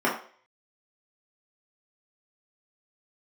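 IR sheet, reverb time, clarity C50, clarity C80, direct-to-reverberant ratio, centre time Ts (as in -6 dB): 0.45 s, 6.5 dB, 11.5 dB, -6.5 dB, 30 ms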